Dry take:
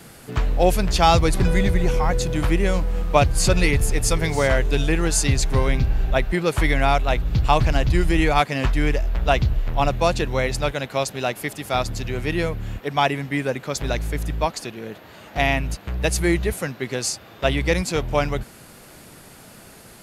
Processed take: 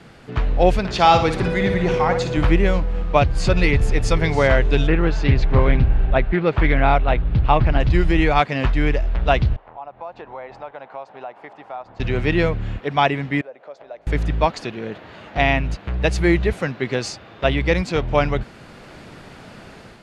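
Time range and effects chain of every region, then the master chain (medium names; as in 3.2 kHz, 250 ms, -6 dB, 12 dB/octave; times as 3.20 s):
0.79–2.37 s: high-pass 190 Hz 6 dB/octave + flutter echo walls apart 9.8 m, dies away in 0.43 s
4.87–7.80 s: distance through air 210 m + loudspeaker Doppler distortion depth 0.26 ms
9.56–12.00 s: band-pass filter 850 Hz, Q 2.7 + compression 2.5:1, threshold -38 dBFS
13.41–14.07 s: compression 4:1, threshold -28 dBFS + band-pass filter 620 Hz, Q 3.3 + tilt EQ +3 dB/octave
whole clip: low-pass 3.7 kHz 12 dB/octave; level rider gain up to 5.5 dB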